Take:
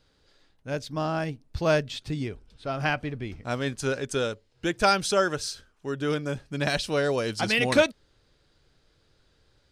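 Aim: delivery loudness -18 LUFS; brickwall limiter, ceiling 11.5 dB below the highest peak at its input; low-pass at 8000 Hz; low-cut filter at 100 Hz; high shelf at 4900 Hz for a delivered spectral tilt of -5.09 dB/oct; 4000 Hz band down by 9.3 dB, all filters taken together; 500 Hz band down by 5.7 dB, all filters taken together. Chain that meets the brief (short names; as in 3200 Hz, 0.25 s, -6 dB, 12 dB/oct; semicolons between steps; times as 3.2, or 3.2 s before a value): HPF 100 Hz; LPF 8000 Hz; bell 500 Hz -7 dB; bell 4000 Hz -8.5 dB; high shelf 4900 Hz -7.5 dB; gain +17 dB; limiter -6.5 dBFS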